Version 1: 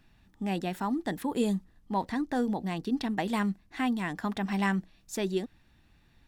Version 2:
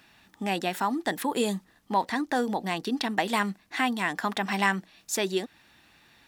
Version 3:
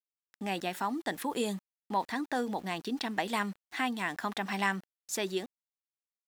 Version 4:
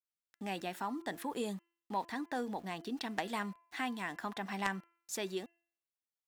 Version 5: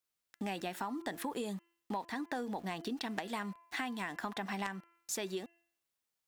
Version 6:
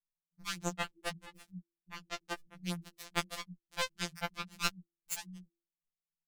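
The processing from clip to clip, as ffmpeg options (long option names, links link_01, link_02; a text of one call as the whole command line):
ffmpeg -i in.wav -filter_complex "[0:a]highpass=frequency=680:poles=1,asplit=2[link_01][link_02];[link_02]acompressor=threshold=-42dB:ratio=6,volume=0dB[link_03];[link_01][link_03]amix=inputs=2:normalize=0,volume=6dB" out.wav
ffmpeg -i in.wav -af "aeval=exprs='val(0)*gte(abs(val(0)),0.00596)':channel_layout=same,volume=-5.5dB" out.wav
ffmpeg -i in.wav -af "aeval=exprs='0.2*(cos(1*acos(clip(val(0)/0.2,-1,1)))-cos(1*PI/2))+0.0708*(cos(3*acos(clip(val(0)/0.2,-1,1)))-cos(3*PI/2))+0.0224*(cos(5*acos(clip(val(0)/0.2,-1,1)))-cos(5*PI/2))+0.00112*(cos(7*acos(clip(val(0)/0.2,-1,1)))-cos(7*PI/2))':channel_layout=same,bandreject=frequency=339.4:width_type=h:width=4,bandreject=frequency=678.8:width_type=h:width=4,bandreject=frequency=1018.2:width_type=h:width=4,bandreject=frequency=1357.6:width_type=h:width=4,bandreject=frequency=1697:width_type=h:width=4,bandreject=frequency=2036.4:width_type=h:width=4,bandreject=frequency=2375.8:width_type=h:width=4,bandreject=frequency=2715.2:width_type=h:width=4,bandreject=frequency=3054.6:width_type=h:width=4,adynamicequalizer=threshold=0.00316:dfrequency=1800:dqfactor=0.7:tfrequency=1800:tqfactor=0.7:attack=5:release=100:ratio=0.375:range=2:mode=cutabove:tftype=highshelf,volume=2dB" out.wav
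ffmpeg -i in.wav -af "acompressor=threshold=-43dB:ratio=6,volume=7.5dB" out.wav
ffmpeg -i in.wav -filter_complex "[0:a]afftfilt=real='re*pow(10,11/40*sin(2*PI*(1.6*log(max(b,1)*sr/1024/100)/log(2)-(-2.6)*(pts-256)/sr)))':imag='im*pow(10,11/40*sin(2*PI*(1.6*log(max(b,1)*sr/1024/100)/log(2)-(-2.6)*(pts-256)/sr)))':win_size=1024:overlap=0.75,acrossover=split=120[link_01][link_02];[link_02]acrusher=bits=3:mix=0:aa=0.5[link_03];[link_01][link_03]amix=inputs=2:normalize=0,afftfilt=real='re*2.83*eq(mod(b,8),0)':imag='im*2.83*eq(mod(b,8),0)':win_size=2048:overlap=0.75,volume=13dB" out.wav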